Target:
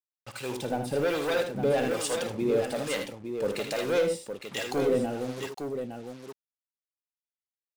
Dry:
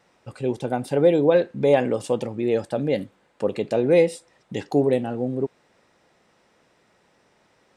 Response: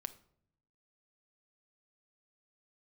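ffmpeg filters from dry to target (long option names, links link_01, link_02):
-filter_complex "[0:a]tiltshelf=frequency=970:gain=-5.5,asoftclip=type=tanh:threshold=-21.5dB,acrusher=bits=6:mix=0:aa=0.5,asplit=2[link_01][link_02];[link_02]aecho=0:1:55|79|860:0.266|0.422|0.447[link_03];[link_01][link_03]amix=inputs=2:normalize=0,acrossover=split=700[link_04][link_05];[link_04]aeval=exprs='val(0)*(1-0.7/2+0.7/2*cos(2*PI*1.2*n/s))':channel_layout=same[link_06];[link_05]aeval=exprs='val(0)*(1-0.7/2-0.7/2*cos(2*PI*1.2*n/s))':channel_layout=same[link_07];[link_06][link_07]amix=inputs=2:normalize=0,volume=2.5dB"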